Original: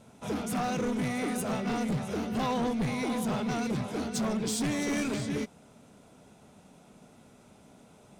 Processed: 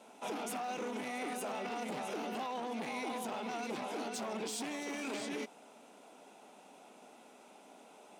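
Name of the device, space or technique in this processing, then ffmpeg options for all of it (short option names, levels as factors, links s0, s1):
laptop speaker: -af "highpass=f=270:w=0.5412,highpass=f=270:w=1.3066,equalizer=f=820:t=o:w=0.6:g=6.5,equalizer=f=2700:t=o:w=0.54:g=5,alimiter=level_in=2:limit=0.0631:level=0:latency=1:release=41,volume=0.501,volume=0.891"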